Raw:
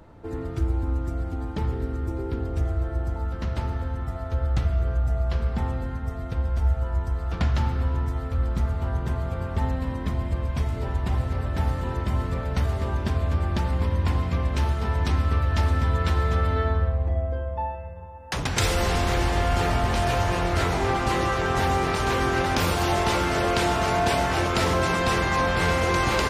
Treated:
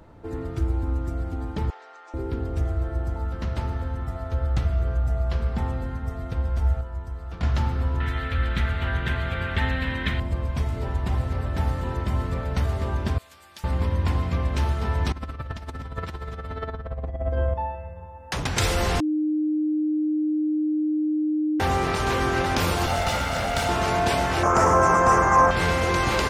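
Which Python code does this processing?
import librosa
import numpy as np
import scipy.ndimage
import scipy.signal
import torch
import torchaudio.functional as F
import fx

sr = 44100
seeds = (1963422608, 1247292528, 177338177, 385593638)

y = fx.ellip_bandpass(x, sr, low_hz=710.0, high_hz=6600.0, order=3, stop_db=60, at=(1.7, 2.14))
y = fx.band_shelf(y, sr, hz=2400.0, db=15.0, octaves=1.7, at=(8.0, 10.2))
y = fx.differentiator(y, sr, at=(13.18, 13.64))
y = fx.over_compress(y, sr, threshold_db=-28.0, ratio=-0.5, at=(15.12, 17.54))
y = fx.lower_of_two(y, sr, delay_ms=1.4, at=(22.86, 23.69))
y = fx.curve_eq(y, sr, hz=(250.0, 1200.0, 4000.0, 6200.0, 11000.0), db=(0, 10, -19, 6, -6), at=(24.43, 25.51))
y = fx.edit(y, sr, fx.clip_gain(start_s=6.81, length_s=0.62, db=-7.0),
    fx.bleep(start_s=19.0, length_s=2.6, hz=306.0, db=-20.5), tone=tone)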